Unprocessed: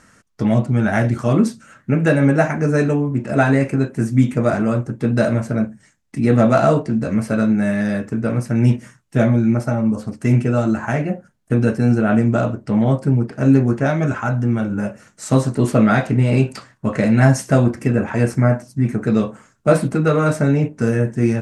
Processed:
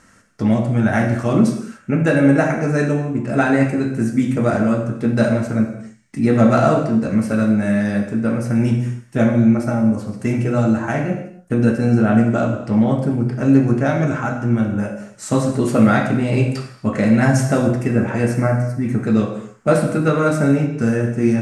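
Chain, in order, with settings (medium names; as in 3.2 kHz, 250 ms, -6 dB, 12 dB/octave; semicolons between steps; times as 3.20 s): gated-style reverb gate 310 ms falling, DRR 4 dB; trim -1 dB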